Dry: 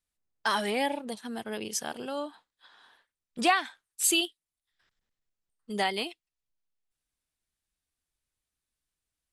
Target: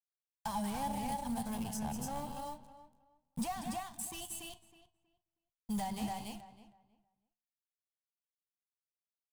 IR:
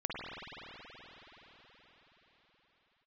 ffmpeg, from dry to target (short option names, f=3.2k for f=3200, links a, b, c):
-filter_complex "[0:a]alimiter=limit=-18dB:level=0:latency=1:release=239,asplit=2[a][b];[b]aecho=0:1:183.7|285.7:0.251|0.501[c];[a][c]amix=inputs=2:normalize=0,acrusher=bits=6:mode=log:mix=0:aa=0.000001,acrossover=split=780|2500[d][e][f];[d]acompressor=threshold=-33dB:ratio=4[g];[e]acompressor=threshold=-40dB:ratio=4[h];[f]acompressor=threshold=-46dB:ratio=4[i];[g][h][i]amix=inputs=3:normalize=0,aeval=exprs='sgn(val(0))*max(abs(val(0))-0.00355,0)':c=same,flanger=delay=9.5:depth=4.8:regen=84:speed=0.24:shape=triangular,asoftclip=type=hard:threshold=-39dB,firequalizer=gain_entry='entry(160,0);entry(360,-29);entry(850,-7);entry(1300,-23);entry(8400,-7)':delay=0.05:min_phase=1,asplit=2[j][k];[k]adelay=319,lowpass=f=2.3k:p=1,volume=-13.5dB,asplit=2[l][m];[m]adelay=319,lowpass=f=2.3k:p=1,volume=0.22,asplit=2[n][o];[o]adelay=319,lowpass=f=2.3k:p=1,volume=0.22[p];[l][n][p]amix=inputs=3:normalize=0[q];[j][q]amix=inputs=2:normalize=0,volume=18dB"